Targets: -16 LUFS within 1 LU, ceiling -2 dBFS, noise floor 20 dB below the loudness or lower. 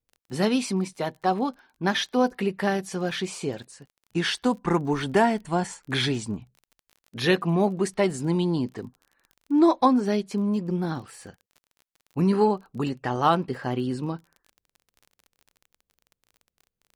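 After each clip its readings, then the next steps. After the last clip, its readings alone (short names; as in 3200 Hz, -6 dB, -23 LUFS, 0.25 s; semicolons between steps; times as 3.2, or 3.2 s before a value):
ticks 30/s; loudness -25.5 LUFS; peak -7.5 dBFS; loudness target -16.0 LUFS
-> de-click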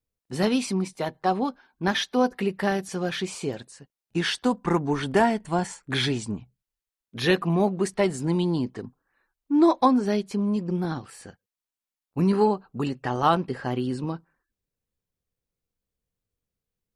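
ticks 0/s; loudness -25.5 LUFS; peak -7.5 dBFS; loudness target -16.0 LUFS
-> gain +9.5 dB; limiter -2 dBFS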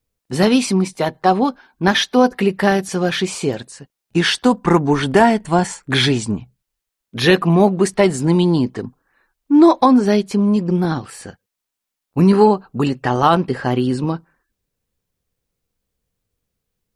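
loudness -16.5 LUFS; peak -2.0 dBFS; noise floor -82 dBFS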